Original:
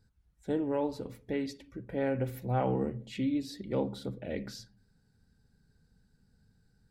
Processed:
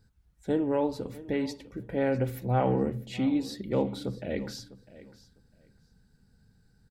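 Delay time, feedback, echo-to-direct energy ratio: 652 ms, 18%, -18.0 dB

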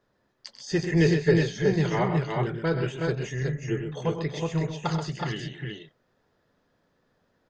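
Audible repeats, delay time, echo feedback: 4, 94 ms, no regular repeats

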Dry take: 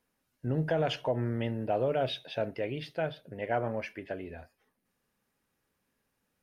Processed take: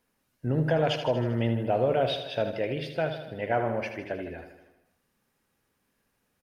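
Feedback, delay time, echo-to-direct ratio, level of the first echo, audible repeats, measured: 60%, 78 ms, -7.0 dB, -9.0 dB, 6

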